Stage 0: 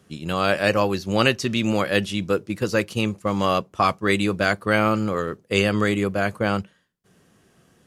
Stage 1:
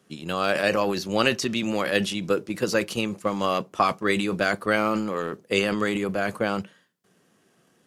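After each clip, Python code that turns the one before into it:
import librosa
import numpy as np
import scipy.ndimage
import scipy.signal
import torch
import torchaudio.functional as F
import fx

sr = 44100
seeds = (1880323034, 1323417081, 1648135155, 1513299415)

y = scipy.signal.sosfilt(scipy.signal.butter(2, 180.0, 'highpass', fs=sr, output='sos'), x)
y = fx.transient(y, sr, attack_db=5, sustain_db=9)
y = y * librosa.db_to_amplitude(-4.5)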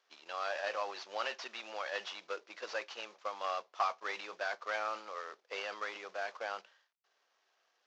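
y = fx.cvsd(x, sr, bps=32000)
y = fx.ladder_highpass(y, sr, hz=560.0, resonance_pct=25)
y = y * librosa.db_to_amplitude(-5.0)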